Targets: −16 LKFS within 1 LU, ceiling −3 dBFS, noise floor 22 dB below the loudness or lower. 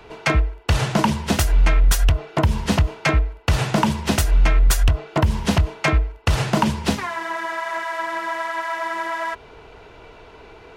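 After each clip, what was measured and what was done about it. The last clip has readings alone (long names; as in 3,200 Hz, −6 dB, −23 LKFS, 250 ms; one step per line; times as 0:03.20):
integrated loudness −21.0 LKFS; sample peak −8.5 dBFS; target loudness −16.0 LKFS
→ level +5 dB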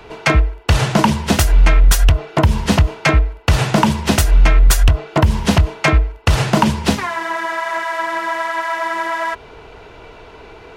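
integrated loudness −16.0 LKFS; sample peak −3.5 dBFS; background noise floor −40 dBFS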